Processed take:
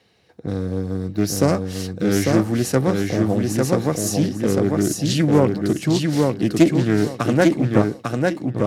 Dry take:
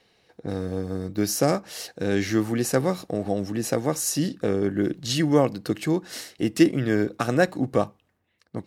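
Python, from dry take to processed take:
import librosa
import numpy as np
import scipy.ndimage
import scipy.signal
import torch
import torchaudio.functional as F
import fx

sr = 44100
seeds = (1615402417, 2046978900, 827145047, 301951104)

p1 = scipy.signal.sosfilt(scipy.signal.butter(4, 56.0, 'highpass', fs=sr, output='sos'), x)
p2 = fx.low_shelf(p1, sr, hz=200.0, db=7.0)
p3 = p2 + fx.echo_feedback(p2, sr, ms=848, feedback_pct=24, wet_db=-3, dry=0)
p4 = fx.doppler_dist(p3, sr, depth_ms=0.28)
y = p4 * 10.0 ** (1.5 / 20.0)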